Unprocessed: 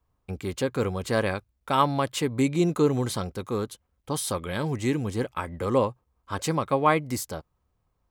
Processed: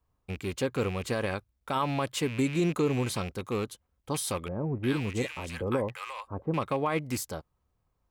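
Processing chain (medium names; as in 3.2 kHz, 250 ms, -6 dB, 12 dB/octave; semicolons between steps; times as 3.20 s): rattle on loud lows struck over -32 dBFS, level -27 dBFS; peak limiter -15.5 dBFS, peak gain reduction 9 dB; 4.48–6.54 s: bands offset in time lows, highs 350 ms, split 930 Hz; trim -2.5 dB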